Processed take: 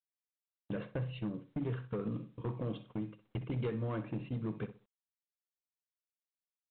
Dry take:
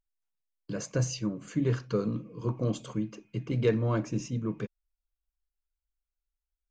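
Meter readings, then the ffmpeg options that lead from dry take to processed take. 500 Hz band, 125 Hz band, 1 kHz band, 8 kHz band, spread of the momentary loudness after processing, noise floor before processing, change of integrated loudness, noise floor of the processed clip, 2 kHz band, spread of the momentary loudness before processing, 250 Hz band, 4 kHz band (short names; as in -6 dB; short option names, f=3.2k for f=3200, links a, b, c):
-9.0 dB, -7.5 dB, -6.5 dB, under -35 dB, 6 LU, under -85 dBFS, -8.0 dB, under -85 dBFS, -8.0 dB, 10 LU, -7.5 dB, -11.0 dB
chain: -filter_complex "[0:a]agate=range=-59dB:threshold=-38dB:ratio=16:detection=peak,acompressor=threshold=-39dB:ratio=5,volume=35.5dB,asoftclip=hard,volume=-35.5dB,asplit=2[a][b];[b]adelay=63,lowpass=f=3k:p=1,volume=-12dB,asplit=2[c][d];[d]adelay=63,lowpass=f=3k:p=1,volume=0.25,asplit=2[e][f];[f]adelay=63,lowpass=f=3k:p=1,volume=0.25[g];[c][e][g]amix=inputs=3:normalize=0[h];[a][h]amix=inputs=2:normalize=0,volume=4.5dB" -ar 8000 -c:a pcm_mulaw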